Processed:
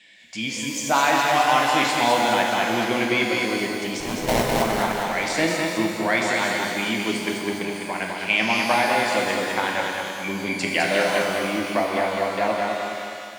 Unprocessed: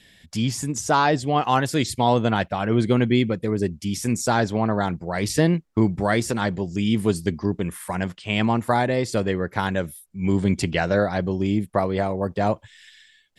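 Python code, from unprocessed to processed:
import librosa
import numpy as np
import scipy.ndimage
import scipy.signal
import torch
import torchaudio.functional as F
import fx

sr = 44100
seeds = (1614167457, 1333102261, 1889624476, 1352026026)

p1 = fx.cabinet(x, sr, low_hz=360.0, low_slope=12, high_hz=7700.0, hz=(440.0, 1300.0, 2300.0, 5400.0), db=(-10, -4, 9, -4))
p2 = fx.sample_hold(p1, sr, seeds[0], rate_hz=1400.0, jitter_pct=20, at=(4.0, 4.62))
p3 = fx.vibrato(p2, sr, rate_hz=1.7, depth_cents=6.4)
p4 = p3 + fx.echo_feedback(p3, sr, ms=206, feedback_pct=51, wet_db=-4, dry=0)
y = fx.rev_shimmer(p4, sr, seeds[1], rt60_s=1.7, semitones=12, shimmer_db=-8, drr_db=1.5)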